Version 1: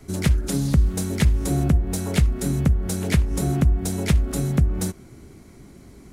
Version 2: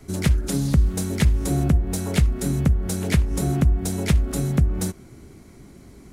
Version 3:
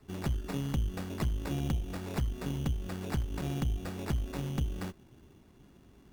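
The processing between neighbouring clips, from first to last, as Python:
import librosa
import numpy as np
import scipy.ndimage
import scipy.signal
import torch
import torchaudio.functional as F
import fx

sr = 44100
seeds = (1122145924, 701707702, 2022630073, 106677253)

y1 = x
y2 = fx.sample_hold(y1, sr, seeds[0], rate_hz=3100.0, jitter_pct=0)
y2 = fx.tube_stage(y2, sr, drive_db=16.0, bias=0.7)
y2 = y2 * librosa.db_to_amplitude(-8.5)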